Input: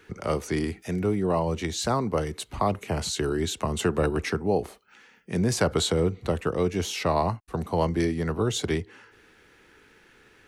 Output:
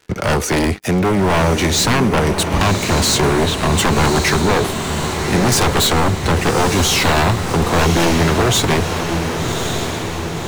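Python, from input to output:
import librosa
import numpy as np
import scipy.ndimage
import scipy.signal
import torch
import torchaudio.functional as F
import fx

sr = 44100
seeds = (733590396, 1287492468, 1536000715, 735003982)

y = np.minimum(x, 2.0 * 10.0 ** (-25.0 / 20.0) - x)
y = fx.bessel_lowpass(y, sr, hz=2500.0, order=2, at=(3.32, 3.77), fade=0.02)
y = fx.leveller(y, sr, passes=5)
y = fx.echo_diffused(y, sr, ms=1139, feedback_pct=61, wet_db=-6)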